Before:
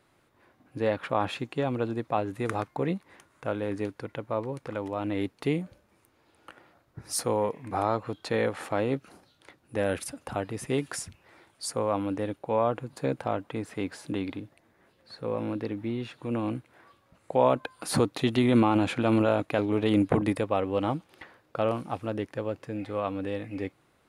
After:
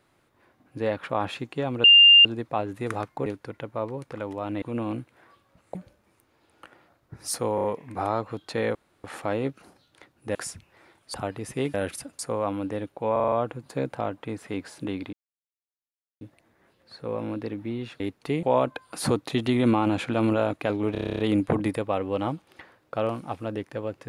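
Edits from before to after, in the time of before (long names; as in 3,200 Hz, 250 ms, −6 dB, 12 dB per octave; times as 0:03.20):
0:01.84: insert tone 2,800 Hz −9.5 dBFS 0.41 s
0:02.85–0:03.81: remove
0:05.17–0:05.60: swap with 0:16.19–0:17.32
0:07.40: stutter 0.03 s, 4 plays
0:08.51: splice in room tone 0.29 s
0:09.82–0:10.27: swap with 0:10.87–0:11.66
0:12.59: stutter 0.04 s, 6 plays
0:14.40: splice in silence 1.08 s
0:19.81: stutter 0.03 s, 10 plays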